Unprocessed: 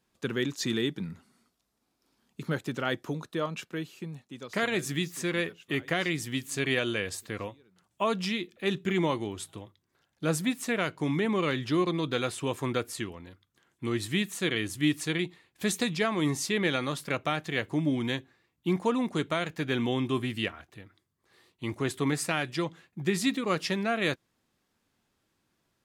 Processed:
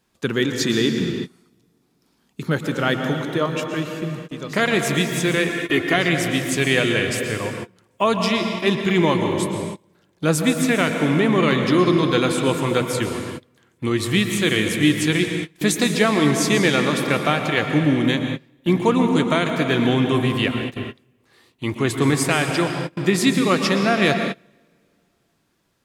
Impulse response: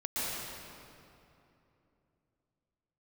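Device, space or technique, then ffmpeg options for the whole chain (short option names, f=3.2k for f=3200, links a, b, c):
keyed gated reverb: -filter_complex "[0:a]asplit=3[a][b][c];[1:a]atrim=start_sample=2205[d];[b][d]afir=irnorm=-1:irlink=0[e];[c]apad=whole_len=1139980[f];[e][f]sidechaingate=range=-28dB:threshold=-52dB:ratio=16:detection=peak,volume=-8.5dB[g];[a][g]amix=inputs=2:normalize=0,asettb=1/sr,asplit=3[h][i][j];[h]atrim=end=5.494[k];[i]atrim=start=5.49:end=5.96,asetpts=PTS-STARTPTS,afade=t=in:d=0.004:c=qsin,afade=t=out:st=0.466:d=0.004:c=qsin,aecho=1:1:2.8:0.6,atrim=end_sample=20727[l];[j]atrim=start=5.956[m];[k][l]acrossfade=d=0.004:c1=hsin:c2=qsin[n];[n][m]acrossfade=d=0.004:c1=qsin:c2=hsin,volume=7dB"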